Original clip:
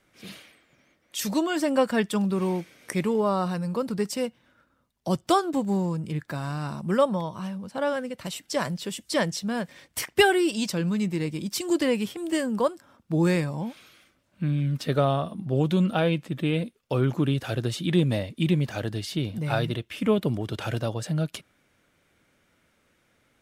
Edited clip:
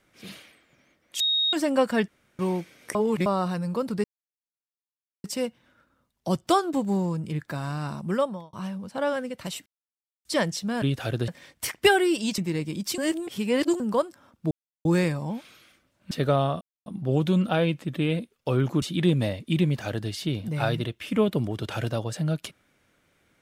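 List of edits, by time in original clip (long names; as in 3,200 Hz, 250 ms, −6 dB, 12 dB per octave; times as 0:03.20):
0:01.20–0:01.53: beep over 3,750 Hz −20.5 dBFS
0:02.08–0:02.39: fill with room tone
0:02.95–0:03.26: reverse
0:04.04: splice in silence 1.20 s
0:06.64–0:07.33: fade out equal-power
0:08.46–0:09.05: silence
0:10.72–0:11.04: remove
0:11.64–0:12.46: reverse
0:13.17: splice in silence 0.34 s
0:14.43–0:14.80: remove
0:15.30: splice in silence 0.25 s
0:17.26–0:17.72: move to 0:09.62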